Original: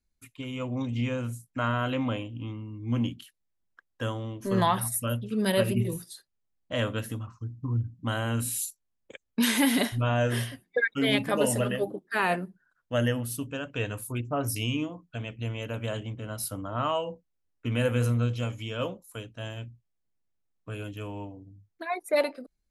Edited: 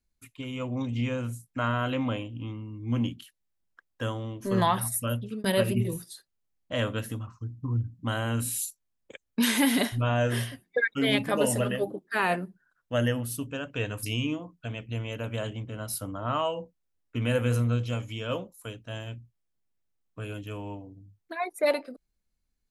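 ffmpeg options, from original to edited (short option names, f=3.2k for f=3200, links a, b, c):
-filter_complex "[0:a]asplit=3[a][b][c];[a]atrim=end=5.44,asetpts=PTS-STARTPTS,afade=t=out:st=5.19:d=0.25:c=qsin[d];[b]atrim=start=5.44:end=14.032,asetpts=PTS-STARTPTS,afade=t=in:d=0.004:c=hsin[e];[c]atrim=start=14.528[f];[d][e]concat=n=2:v=0:a=1[g];[g][f]acrossfade=d=0.004:c1=hsin:c2=hsin"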